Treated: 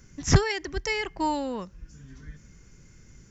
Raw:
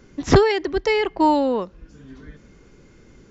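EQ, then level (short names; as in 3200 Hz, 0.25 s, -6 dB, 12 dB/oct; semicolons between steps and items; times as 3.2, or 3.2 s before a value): EQ curve 150 Hz 0 dB, 270 Hz -10 dB, 450 Hz -13 dB, 790 Hz -10 dB, 1200 Hz -8 dB, 1800 Hz -3 dB, 4000 Hz -7 dB, 5700 Hz +5 dB; 0.0 dB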